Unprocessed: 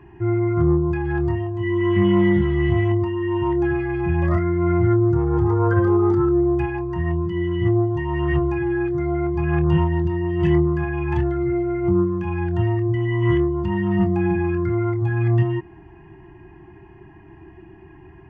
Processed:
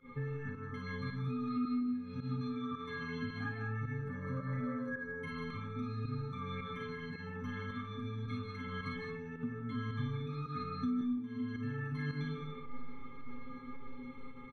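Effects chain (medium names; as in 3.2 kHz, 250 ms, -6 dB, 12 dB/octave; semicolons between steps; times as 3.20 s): treble shelf 2.6 kHz -6.5 dB; band-stop 2.2 kHz, Q 8.6; tape speed +26%; inharmonic resonator 250 Hz, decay 0.34 s, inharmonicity 0.03; early reflections 37 ms -8 dB, 53 ms -5 dB; compression 20:1, threshold -47 dBFS, peak gain reduction 26.5 dB; high-order bell 600 Hz -9.5 dB 1.1 oct; comb 7.4 ms, depth 75%; volume shaper 109 bpm, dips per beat 1, -17 dB, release 108 ms; on a send at -2 dB: reverberation RT60 0.45 s, pre-delay 117 ms; on the sum: trim +11 dB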